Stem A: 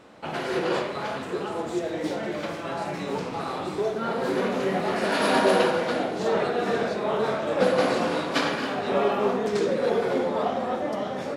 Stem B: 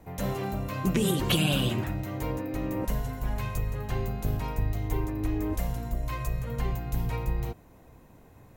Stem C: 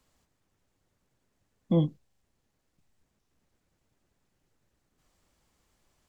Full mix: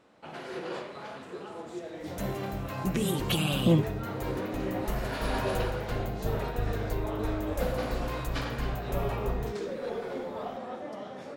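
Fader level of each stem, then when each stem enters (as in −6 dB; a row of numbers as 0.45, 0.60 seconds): −11.0, −3.5, +1.5 decibels; 0.00, 2.00, 1.95 seconds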